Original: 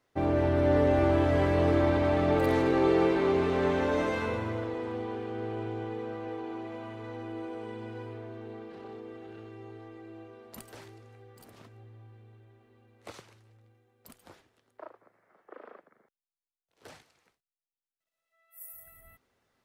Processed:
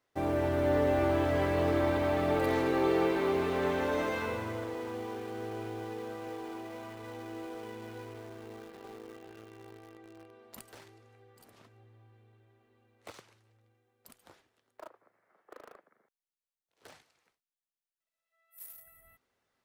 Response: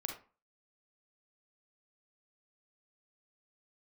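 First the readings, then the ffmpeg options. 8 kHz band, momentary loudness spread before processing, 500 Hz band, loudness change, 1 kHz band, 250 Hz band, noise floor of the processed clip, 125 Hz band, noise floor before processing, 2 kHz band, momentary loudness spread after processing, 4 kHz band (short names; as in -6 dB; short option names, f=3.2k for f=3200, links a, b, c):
+1.0 dB, 22 LU, -3.0 dB, -3.5 dB, -2.0 dB, -4.0 dB, under -85 dBFS, -6.0 dB, under -85 dBFS, -1.5 dB, 20 LU, -1.0 dB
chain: -filter_complex "[0:a]lowshelf=f=370:g=-5,asplit=2[a][b];[b]acrusher=bits=6:mix=0:aa=0.000001,volume=-8.5dB[c];[a][c]amix=inputs=2:normalize=0,volume=-4dB"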